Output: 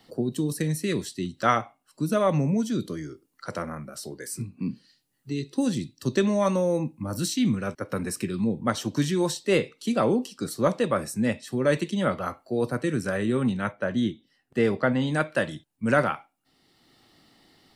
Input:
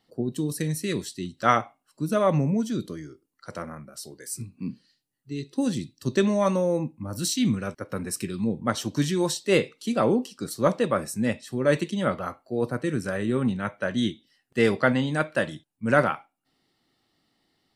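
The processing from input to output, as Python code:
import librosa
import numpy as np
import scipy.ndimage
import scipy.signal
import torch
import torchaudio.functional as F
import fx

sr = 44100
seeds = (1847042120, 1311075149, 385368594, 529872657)

y = fx.high_shelf(x, sr, hz=2000.0, db=-10.0, at=(13.71, 15.0), fade=0.02)
y = fx.band_squash(y, sr, depth_pct=40)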